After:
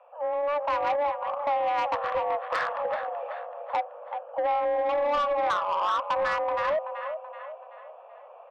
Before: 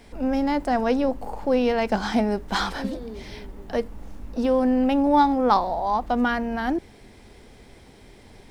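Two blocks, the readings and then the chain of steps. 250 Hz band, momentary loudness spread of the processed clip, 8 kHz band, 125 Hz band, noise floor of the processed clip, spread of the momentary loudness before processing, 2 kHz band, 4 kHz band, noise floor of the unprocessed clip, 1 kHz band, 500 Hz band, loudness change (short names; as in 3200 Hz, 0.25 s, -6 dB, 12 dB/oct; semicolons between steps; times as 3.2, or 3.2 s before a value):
-26.5 dB, 12 LU, n/a, under -15 dB, -48 dBFS, 16 LU, -1.5 dB, -6.0 dB, -49 dBFS, -1.0 dB, -2.0 dB, -4.5 dB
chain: Wiener smoothing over 25 samples; compressor 16:1, threshold -23 dBFS, peak gain reduction 10.5 dB; feedback echo 0.38 s, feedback 44%, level -10 dB; mistuned SSB +290 Hz 240–2700 Hz; AGC gain up to 5 dB; soft clip -20.5 dBFS, distortion -13 dB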